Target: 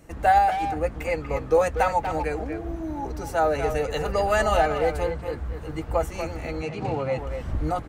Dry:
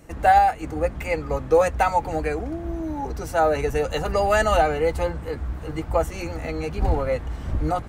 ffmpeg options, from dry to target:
ffmpeg -i in.wav -filter_complex "[0:a]asettb=1/sr,asplit=3[link_01][link_02][link_03];[link_01]atrim=end=6.624[link_04];[link_02]atrim=start=6.62:end=7.18,asetpts=PTS-STARTPTS,afade=type=in:duration=0.004:curve=qsin,afade=type=out:start_time=0.556:duration=0.004:curve=qsin,highpass=frequency=110:width=0.5412,highpass=frequency=110:width=1.3066,equalizer=frequency=130:width_type=q:width=4:gain=7,equalizer=frequency=1600:width_type=q:width=4:gain=-4,equalizer=frequency=2700:width_type=q:width=4:gain=5,lowpass=frequency=8300:width=0.5412,lowpass=frequency=8300:width=1.3066[link_05];[link_03]atrim=start=7.176[link_06];[link_04][link_05]acrossfade=duration=0.004:curve1=hsin:curve2=qsin[link_07];[link_07][link_06]acrossfade=duration=0.004:curve1=qsin:curve2=hsin,asplit=2[link_08][link_09];[link_09]adelay=240,highpass=300,lowpass=3400,asoftclip=type=hard:threshold=-15dB,volume=-7dB[link_10];[link_08][link_10]amix=inputs=2:normalize=0,volume=-2.5dB" out.wav

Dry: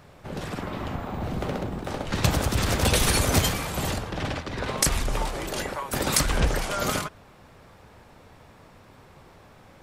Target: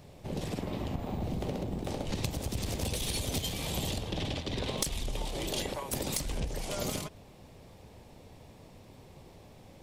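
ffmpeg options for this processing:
ffmpeg -i in.wav -filter_complex "[0:a]equalizer=frequency=1400:width_type=o:width=1:gain=-14.5,acompressor=threshold=-30dB:ratio=12,aeval=exprs='0.75*(cos(1*acos(clip(val(0)/0.75,-1,1)))-cos(1*PI/2))+0.133*(cos(6*acos(clip(val(0)/0.75,-1,1)))-cos(6*PI/2))':channel_layout=same,asettb=1/sr,asplit=3[link_01][link_02][link_03];[link_01]atrim=end=3.004[link_04];[link_02]atrim=start=3:end=5.74,asetpts=PTS-STARTPTS,afade=type=in:duration=0.004:curve=qsin,afade=type=out:start_time=2.736:duration=0.004:curve=qsin,equalizer=frequency=3400:width_type=o:width=0.63:gain=7[link_05];[link_03]atrim=start=5.736[link_06];[link_04][link_05]acrossfade=duration=0.004:curve1=hsin:curve2=qsin[link_07];[link_07][link_06]acrossfade=duration=0.004:curve1=qsin:curve2=hsin" out.wav

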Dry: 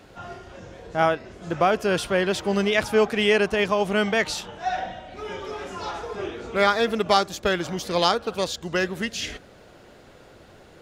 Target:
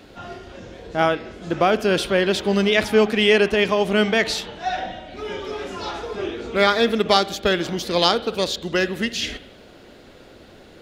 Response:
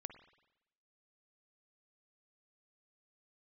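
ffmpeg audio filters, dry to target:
-filter_complex "[0:a]asplit=2[link_01][link_02];[link_02]equalizer=frequency=125:width_type=o:width=1:gain=-10,equalizer=frequency=250:width_type=o:width=1:gain=7,equalizer=frequency=1000:width_type=o:width=1:gain=-10,equalizer=frequency=4000:width_type=o:width=1:gain=7,equalizer=frequency=8000:width_type=o:width=1:gain=-9[link_03];[1:a]atrim=start_sample=2205[link_04];[link_03][link_04]afir=irnorm=-1:irlink=0,volume=5dB[link_05];[link_01][link_05]amix=inputs=2:normalize=0,volume=-2dB"

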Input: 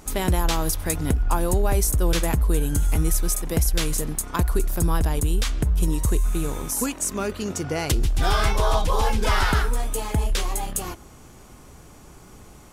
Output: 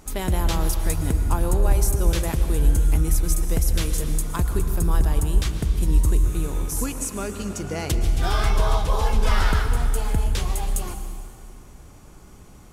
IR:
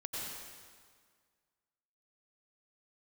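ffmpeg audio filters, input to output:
-filter_complex "[0:a]asplit=2[link_01][link_02];[1:a]atrim=start_sample=2205,asetrate=34839,aresample=44100,lowshelf=frequency=170:gain=10[link_03];[link_02][link_03]afir=irnorm=-1:irlink=0,volume=-8.5dB[link_04];[link_01][link_04]amix=inputs=2:normalize=0,volume=-5.5dB"

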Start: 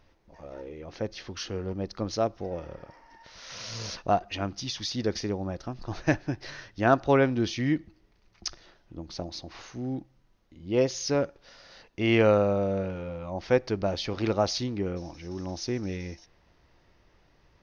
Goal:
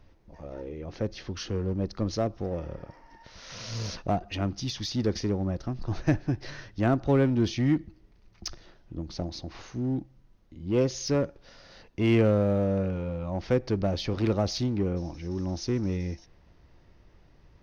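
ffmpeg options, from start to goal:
ffmpeg -i in.wav -filter_complex "[0:a]lowshelf=frequency=370:gain=9,acrossover=split=440[link_01][link_02];[link_02]acompressor=threshold=-23dB:ratio=6[link_03];[link_01][link_03]amix=inputs=2:normalize=0,asplit=2[link_04][link_05];[link_05]volume=25.5dB,asoftclip=hard,volume=-25.5dB,volume=-5dB[link_06];[link_04][link_06]amix=inputs=2:normalize=0,volume=-5.5dB" out.wav

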